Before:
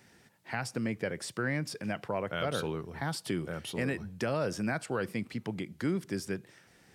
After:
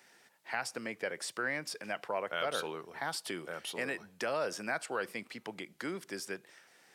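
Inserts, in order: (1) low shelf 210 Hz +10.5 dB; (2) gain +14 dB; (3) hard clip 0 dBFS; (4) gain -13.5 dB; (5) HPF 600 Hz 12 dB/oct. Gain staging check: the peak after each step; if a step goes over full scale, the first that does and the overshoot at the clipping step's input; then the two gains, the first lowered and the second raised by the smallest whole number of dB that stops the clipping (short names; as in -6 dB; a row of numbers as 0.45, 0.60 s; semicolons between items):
-16.0, -2.0, -2.0, -15.5, -18.5 dBFS; no overload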